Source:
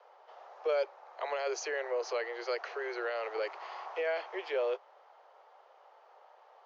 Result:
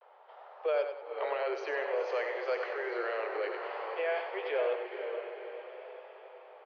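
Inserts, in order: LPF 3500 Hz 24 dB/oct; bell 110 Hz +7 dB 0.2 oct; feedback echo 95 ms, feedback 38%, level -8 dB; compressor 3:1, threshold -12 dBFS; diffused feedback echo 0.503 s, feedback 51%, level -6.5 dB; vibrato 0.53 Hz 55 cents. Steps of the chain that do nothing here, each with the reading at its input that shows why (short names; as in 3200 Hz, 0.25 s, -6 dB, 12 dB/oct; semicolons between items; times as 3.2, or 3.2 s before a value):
bell 110 Hz: input band starts at 300 Hz; compressor, threshold -12 dBFS: input peak -20.0 dBFS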